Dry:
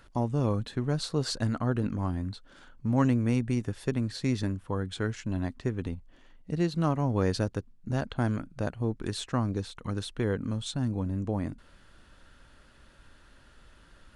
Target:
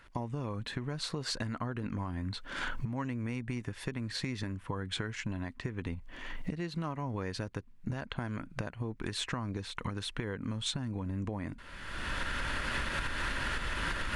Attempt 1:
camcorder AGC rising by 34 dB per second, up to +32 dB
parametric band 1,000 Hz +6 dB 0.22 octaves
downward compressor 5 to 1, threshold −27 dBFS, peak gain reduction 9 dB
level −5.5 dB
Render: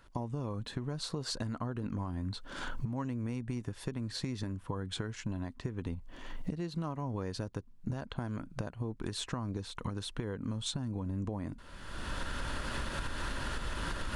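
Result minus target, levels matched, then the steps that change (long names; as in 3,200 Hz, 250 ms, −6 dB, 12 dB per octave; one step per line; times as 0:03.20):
2,000 Hz band −5.5 dB
add after downward compressor: parametric band 2,100 Hz +9.5 dB 1.1 octaves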